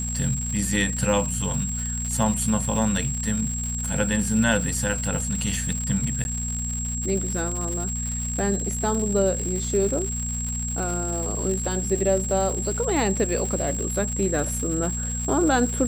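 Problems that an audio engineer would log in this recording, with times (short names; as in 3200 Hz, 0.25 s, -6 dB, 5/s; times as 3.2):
crackle 240/s -29 dBFS
hum 60 Hz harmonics 4 -30 dBFS
tone 7600 Hz -29 dBFS
6.24–6.25 gap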